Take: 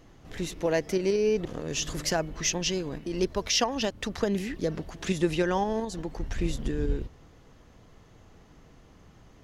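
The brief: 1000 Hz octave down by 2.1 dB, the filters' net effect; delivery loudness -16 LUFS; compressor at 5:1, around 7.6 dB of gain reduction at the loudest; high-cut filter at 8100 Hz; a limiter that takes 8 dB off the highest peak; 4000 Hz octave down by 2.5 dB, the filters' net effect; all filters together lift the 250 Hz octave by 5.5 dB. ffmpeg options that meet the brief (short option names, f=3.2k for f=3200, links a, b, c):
-af "lowpass=8.1k,equalizer=f=250:t=o:g=8.5,equalizer=f=1k:t=o:g=-3.5,equalizer=f=4k:t=o:g=-3,acompressor=threshold=-25dB:ratio=5,volume=17dB,alimiter=limit=-6dB:level=0:latency=1"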